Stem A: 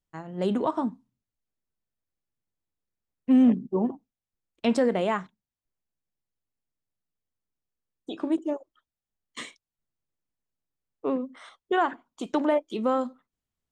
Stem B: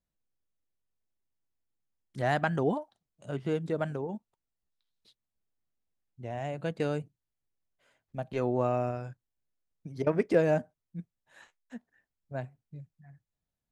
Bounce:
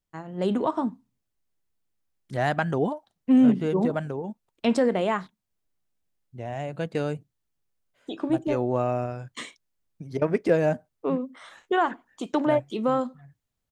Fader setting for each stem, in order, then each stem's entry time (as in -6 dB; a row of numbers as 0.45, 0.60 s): +1.0, +3.0 dB; 0.00, 0.15 s